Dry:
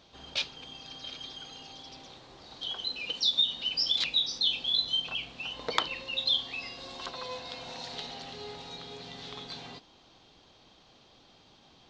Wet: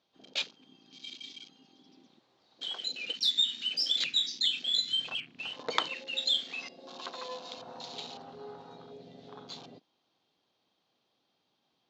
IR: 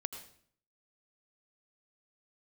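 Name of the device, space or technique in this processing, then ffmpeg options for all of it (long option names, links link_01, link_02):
over-cleaned archive recording: -af "highpass=160,lowpass=8000,afwtdn=0.00708,volume=-1dB"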